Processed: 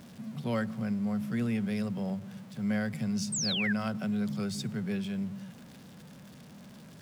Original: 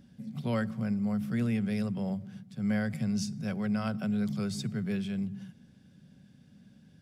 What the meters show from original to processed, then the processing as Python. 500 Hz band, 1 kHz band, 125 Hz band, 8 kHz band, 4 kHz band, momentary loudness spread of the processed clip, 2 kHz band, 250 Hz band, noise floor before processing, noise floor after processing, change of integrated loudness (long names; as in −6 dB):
0.0 dB, +0.5 dB, −2.0 dB, +9.0 dB, +8.5 dB, 21 LU, +4.0 dB, −0.5 dB, −60 dBFS, −51 dBFS, 0.0 dB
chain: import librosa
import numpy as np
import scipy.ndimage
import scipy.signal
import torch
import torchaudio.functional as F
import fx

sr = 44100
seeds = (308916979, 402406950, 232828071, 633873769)

y = x + 0.5 * 10.0 ** (-46.0 / 20.0) * np.sign(x)
y = fx.low_shelf(y, sr, hz=82.0, db=-10.0)
y = fx.spec_paint(y, sr, seeds[0], shape='fall', start_s=3.32, length_s=0.41, low_hz=1500.0, high_hz=8800.0, level_db=-32.0)